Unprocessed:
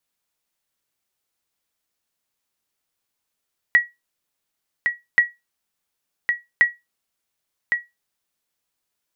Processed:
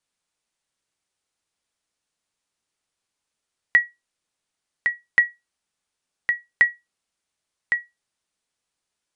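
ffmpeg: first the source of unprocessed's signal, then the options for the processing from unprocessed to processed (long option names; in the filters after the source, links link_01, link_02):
-f lavfi -i "aevalsrc='0.501*(sin(2*PI*1920*mod(t,1.43))*exp(-6.91*mod(t,1.43)/0.2)+0.501*sin(2*PI*1920*max(mod(t,1.43)-1.11,0))*exp(-6.91*max(mod(t,1.43)-1.11,0)/0.2))':duration=4.29:sample_rate=44100"
-af "aresample=22050,aresample=44100"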